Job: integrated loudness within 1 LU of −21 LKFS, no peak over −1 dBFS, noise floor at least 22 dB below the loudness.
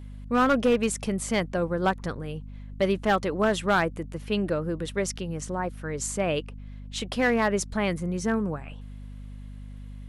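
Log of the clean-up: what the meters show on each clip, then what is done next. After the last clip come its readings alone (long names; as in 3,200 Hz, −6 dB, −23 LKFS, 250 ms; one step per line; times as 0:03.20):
share of clipped samples 0.7%; peaks flattened at −15.5 dBFS; mains hum 50 Hz; hum harmonics up to 250 Hz; level of the hum −38 dBFS; integrated loudness −27.0 LKFS; sample peak −15.5 dBFS; target loudness −21.0 LKFS
→ clipped peaks rebuilt −15.5 dBFS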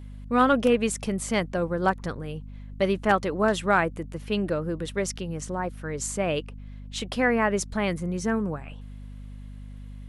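share of clipped samples 0.0%; mains hum 50 Hz; hum harmonics up to 250 Hz; level of the hum −38 dBFS
→ hum removal 50 Hz, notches 5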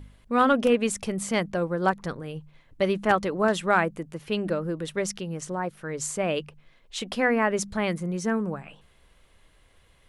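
mains hum none found; integrated loudness −26.5 LKFS; sample peak −7.0 dBFS; target loudness −21.0 LKFS
→ level +5.5 dB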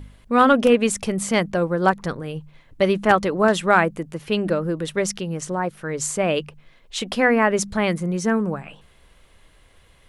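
integrated loudness −21.0 LKFS; sample peak −1.5 dBFS; background noise floor −54 dBFS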